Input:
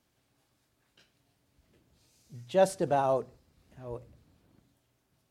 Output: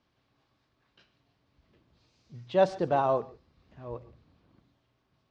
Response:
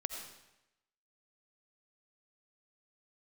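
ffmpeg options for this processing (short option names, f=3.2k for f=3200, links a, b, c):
-filter_complex "[0:a]lowpass=f=4.9k:w=0.5412,lowpass=f=4.9k:w=1.3066,equalizer=f=1.1k:t=o:w=0.27:g=6,asplit=2[a][b];[1:a]atrim=start_sample=2205,atrim=end_sample=3969,asetrate=26901,aresample=44100[c];[b][c]afir=irnorm=-1:irlink=0,volume=-8.5dB[d];[a][d]amix=inputs=2:normalize=0,volume=-2.5dB"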